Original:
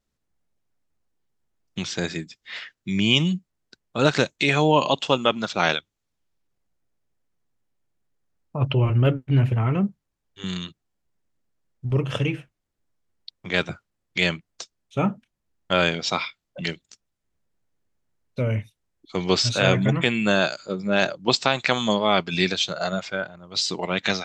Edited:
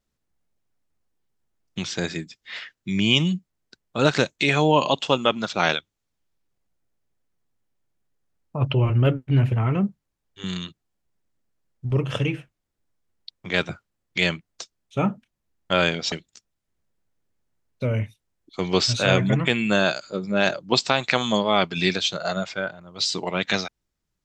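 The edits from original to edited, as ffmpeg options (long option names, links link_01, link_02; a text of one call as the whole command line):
ffmpeg -i in.wav -filter_complex "[0:a]asplit=2[link_01][link_02];[link_01]atrim=end=16.122[link_03];[link_02]atrim=start=16.678[link_04];[link_03][link_04]acrossfade=duration=0.004:curve1=hsin:curve2=hsin" out.wav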